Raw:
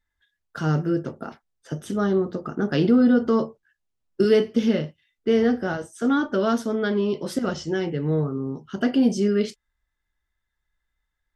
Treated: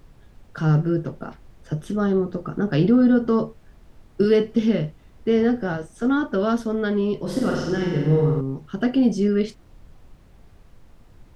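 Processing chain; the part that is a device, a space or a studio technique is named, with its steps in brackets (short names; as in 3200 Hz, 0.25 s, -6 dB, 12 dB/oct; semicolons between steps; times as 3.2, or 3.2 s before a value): car interior (bell 140 Hz +5.5 dB; high shelf 4500 Hz -6.5 dB; brown noise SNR 24 dB); 7.23–8.41 flutter echo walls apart 8 m, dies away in 1.1 s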